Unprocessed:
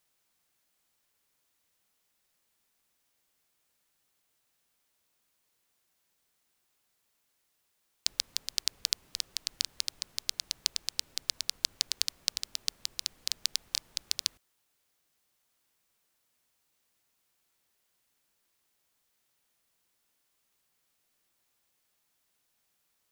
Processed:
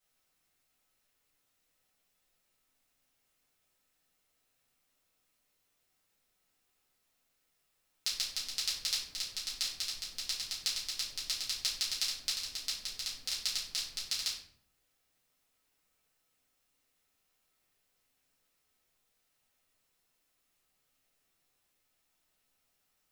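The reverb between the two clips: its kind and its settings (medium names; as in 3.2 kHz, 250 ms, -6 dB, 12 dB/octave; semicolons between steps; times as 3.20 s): simulated room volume 71 m³, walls mixed, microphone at 2.1 m; trim -10 dB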